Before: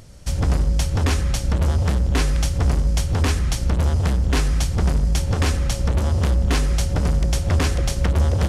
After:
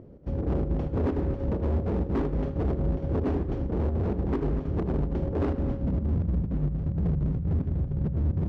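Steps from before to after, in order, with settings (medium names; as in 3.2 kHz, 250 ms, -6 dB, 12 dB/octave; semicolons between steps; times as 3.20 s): tone controls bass +2 dB, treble -7 dB; low-pass sweep 370 Hz -> 160 Hz, 5.45–6.25 s; tilt EQ +4 dB/octave; in parallel at -1 dB: peak limiter -23 dBFS, peak gain reduction 7.5 dB; on the sum: Schroeder reverb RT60 0.58 s, combs from 27 ms, DRR 6.5 dB; square tremolo 4.3 Hz, depth 60%, duty 75%; overload inside the chain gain 23 dB; low-pass 7.2 kHz 12 dB/octave; on a send: multi-head delay 80 ms, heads first and third, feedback 45%, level -14 dB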